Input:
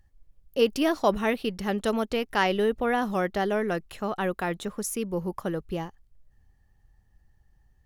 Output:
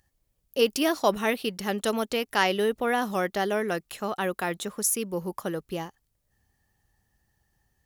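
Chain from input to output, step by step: HPF 180 Hz 6 dB/oct; high shelf 4400 Hz +9.5 dB

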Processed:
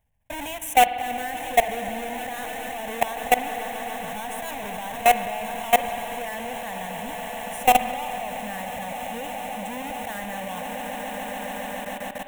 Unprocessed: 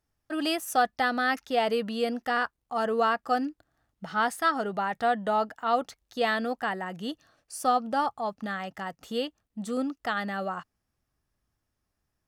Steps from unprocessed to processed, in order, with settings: half-waves squared off; fixed phaser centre 1300 Hz, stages 6; on a send: swelling echo 0.141 s, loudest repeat 8, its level -16.5 dB; on the sum: level quantiser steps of 20 dB; spring tank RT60 3.3 s, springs 48 ms, chirp 30 ms, DRR 9 dB; gain +7.5 dB

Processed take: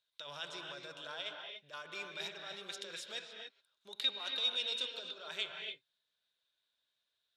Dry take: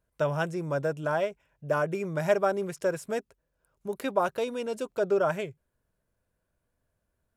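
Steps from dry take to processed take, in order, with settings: negative-ratio compressor -30 dBFS, ratio -1; band-pass 3700 Hz, Q 9.8; reverb, pre-delay 3 ms, DRR 2.5 dB; gain +16 dB

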